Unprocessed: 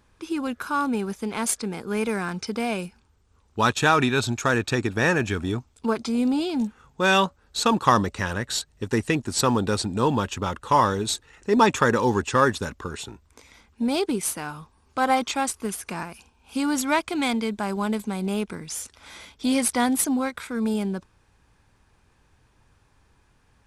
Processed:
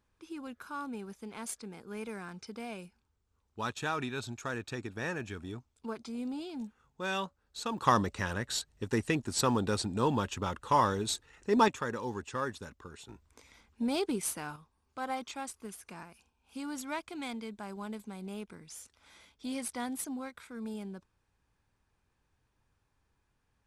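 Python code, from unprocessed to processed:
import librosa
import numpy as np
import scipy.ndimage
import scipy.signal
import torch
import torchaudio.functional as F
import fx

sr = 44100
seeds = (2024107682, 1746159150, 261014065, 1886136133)

y = fx.gain(x, sr, db=fx.steps((0.0, -15.0), (7.78, -7.0), (11.68, -15.5), (13.09, -7.5), (14.56, -15.0)))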